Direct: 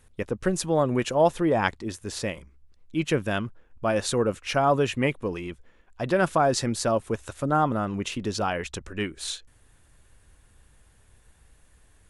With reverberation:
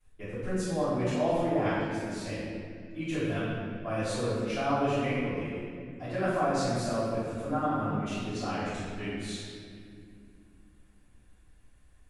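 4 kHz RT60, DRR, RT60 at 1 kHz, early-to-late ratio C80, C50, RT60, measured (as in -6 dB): 1.5 s, -21.0 dB, 2.0 s, -1.0 dB, -3.5 dB, 2.4 s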